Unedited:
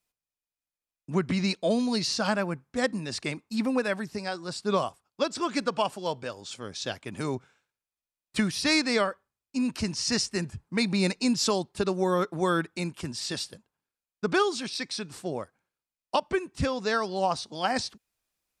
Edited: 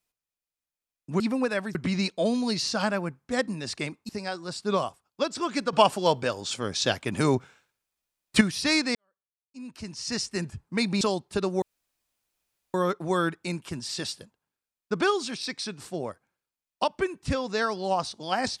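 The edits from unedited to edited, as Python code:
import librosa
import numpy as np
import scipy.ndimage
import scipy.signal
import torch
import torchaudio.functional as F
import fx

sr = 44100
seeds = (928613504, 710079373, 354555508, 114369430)

y = fx.edit(x, sr, fx.move(start_s=3.54, length_s=0.55, to_s=1.2),
    fx.clip_gain(start_s=5.73, length_s=2.68, db=8.0),
    fx.fade_in_span(start_s=8.95, length_s=1.48, curve='qua'),
    fx.cut(start_s=11.01, length_s=0.44),
    fx.insert_room_tone(at_s=12.06, length_s=1.12), tone=tone)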